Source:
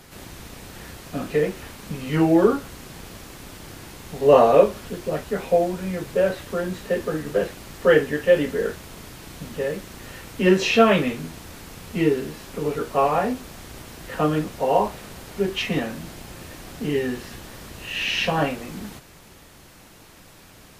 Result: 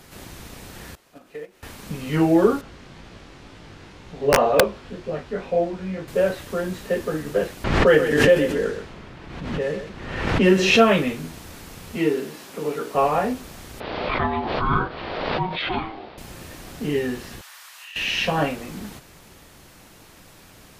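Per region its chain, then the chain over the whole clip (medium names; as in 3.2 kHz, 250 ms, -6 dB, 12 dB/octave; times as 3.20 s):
0.95–1.63 s: tone controls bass -11 dB, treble -2 dB + compression 4:1, threshold -33 dBFS + gate -35 dBFS, range -15 dB
2.61–6.08 s: low-pass 4.4 kHz + chorus 2 Hz, delay 17.5 ms, depth 4.5 ms + integer overflow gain 7 dB
7.64–10.80 s: level-controlled noise filter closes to 2.2 kHz, open at -15.5 dBFS + delay 128 ms -9 dB + swell ahead of each attack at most 47 dB/s
11.96–12.95 s: high-pass 190 Hz + hum notches 60/120/180/240/300/360/420/480/540 Hz
13.80–16.18 s: steep low-pass 4 kHz 48 dB/octave + ring modulator 550 Hz + swell ahead of each attack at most 29 dB/s
17.41–17.96 s: high-pass 980 Hz 24 dB/octave + compression 5:1, threshold -38 dBFS
whole clip: none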